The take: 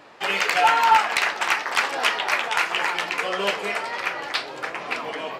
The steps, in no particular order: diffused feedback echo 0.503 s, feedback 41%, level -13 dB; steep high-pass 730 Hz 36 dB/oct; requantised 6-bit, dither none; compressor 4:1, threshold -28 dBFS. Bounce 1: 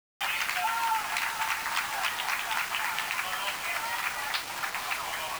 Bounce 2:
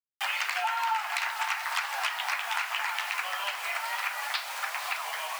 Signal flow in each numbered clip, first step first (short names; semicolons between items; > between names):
diffused feedback echo > compressor > steep high-pass > requantised; diffused feedback echo > requantised > compressor > steep high-pass